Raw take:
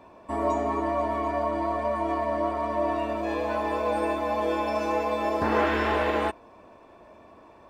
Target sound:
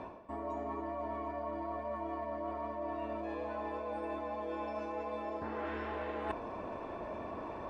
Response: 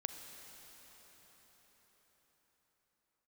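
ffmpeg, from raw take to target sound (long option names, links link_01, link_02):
-af "acontrast=90,aemphasis=mode=reproduction:type=75fm,areverse,acompressor=threshold=-38dB:ratio=20,areverse,volume=2dB"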